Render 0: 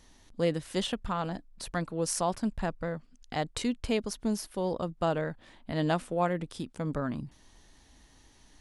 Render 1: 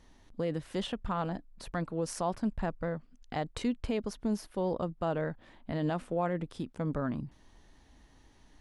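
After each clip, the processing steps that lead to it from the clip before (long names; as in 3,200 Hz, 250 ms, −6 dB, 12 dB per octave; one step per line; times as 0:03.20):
high-shelf EQ 3,500 Hz −11 dB
brickwall limiter −22 dBFS, peak gain reduction 6.5 dB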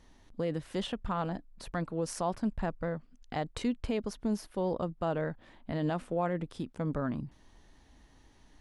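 no processing that can be heard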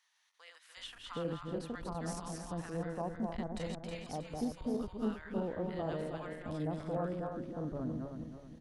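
feedback delay that plays each chunk backwards 159 ms, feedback 61%, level −3 dB
multiband delay without the direct sound highs, lows 770 ms, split 1,100 Hz
saturating transformer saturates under 180 Hz
level −6 dB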